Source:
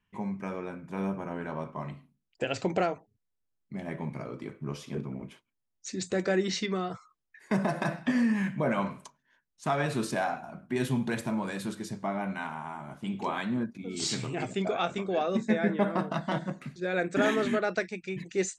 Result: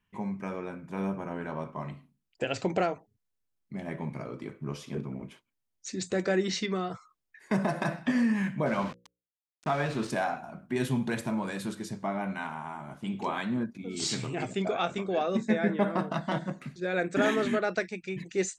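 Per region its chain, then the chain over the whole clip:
8.66–10.1 sample gate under -37.5 dBFS + air absorption 80 m + notches 60/120/180/240/300/360/420/480/540 Hz
whole clip: dry

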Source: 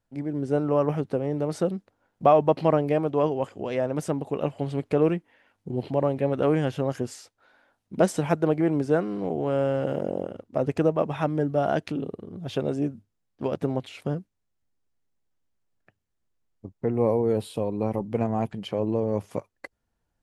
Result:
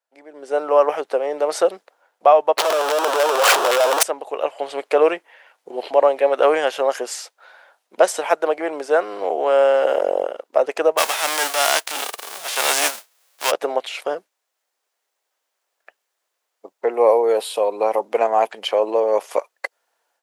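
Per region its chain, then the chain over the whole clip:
2.58–4.03 infinite clipping + weighting filter A + sample leveller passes 5
10.97–13.5 spectral whitening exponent 0.3 + transient shaper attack -8 dB, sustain +2 dB
whole clip: HPF 520 Hz 24 dB/oct; AGC gain up to 15.5 dB; gain -1 dB

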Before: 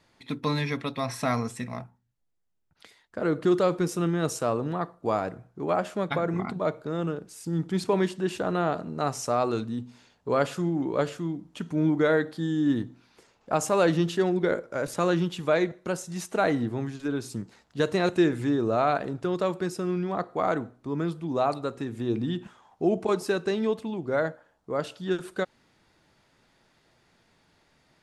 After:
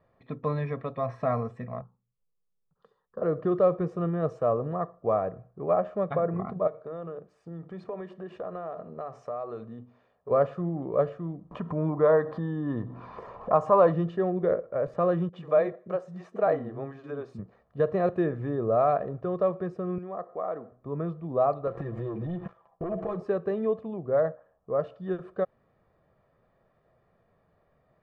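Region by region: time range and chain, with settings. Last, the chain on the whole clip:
1.81–3.22 fixed phaser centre 440 Hz, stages 8 + mismatched tape noise reduction decoder only
6.67–10.31 low shelf 230 Hz -10 dB + compressor 4:1, threshold -32 dBFS + notches 50/100/150/200/250/300/350 Hz
11.51–13.93 bell 1000 Hz +12.5 dB 0.47 oct + upward compressor, threshold -22 dBFS
15.29–17.39 HPF 180 Hz + bands offset in time lows, highs 40 ms, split 280 Hz + mismatched tape noise reduction encoder only
19.98–20.72 HPF 230 Hz + compressor 1.5:1, threshold -40 dBFS
21.67–23.2 comb 6 ms, depth 86% + sample leveller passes 3 + compressor 10:1, threshold -28 dBFS
whole clip: LPF 1000 Hz 12 dB/oct; low shelf 130 Hz -5 dB; comb 1.7 ms, depth 60%

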